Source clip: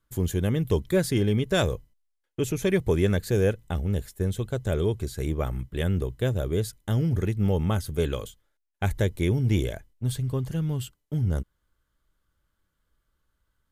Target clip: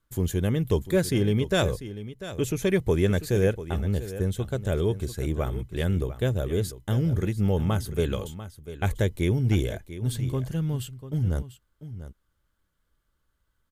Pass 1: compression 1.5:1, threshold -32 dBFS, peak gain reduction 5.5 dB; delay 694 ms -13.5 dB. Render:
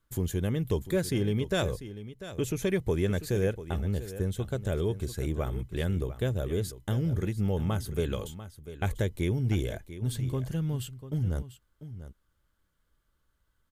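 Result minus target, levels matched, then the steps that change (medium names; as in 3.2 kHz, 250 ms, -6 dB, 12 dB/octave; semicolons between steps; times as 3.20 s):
compression: peak gain reduction +5.5 dB
remove: compression 1.5:1, threshold -32 dBFS, peak gain reduction 5.5 dB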